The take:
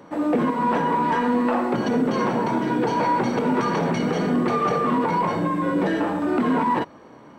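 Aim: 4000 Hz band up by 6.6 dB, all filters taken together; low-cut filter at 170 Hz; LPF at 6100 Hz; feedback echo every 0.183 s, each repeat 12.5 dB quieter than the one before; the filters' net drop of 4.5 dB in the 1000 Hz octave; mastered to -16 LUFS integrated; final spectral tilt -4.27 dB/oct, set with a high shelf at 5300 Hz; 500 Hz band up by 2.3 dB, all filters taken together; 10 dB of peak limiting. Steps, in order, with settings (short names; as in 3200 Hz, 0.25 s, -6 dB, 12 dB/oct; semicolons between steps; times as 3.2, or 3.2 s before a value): HPF 170 Hz; LPF 6100 Hz; bell 500 Hz +4 dB; bell 1000 Hz -6.5 dB; bell 4000 Hz +7.5 dB; high shelf 5300 Hz +6 dB; limiter -19.5 dBFS; feedback echo 0.183 s, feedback 24%, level -12.5 dB; gain +11 dB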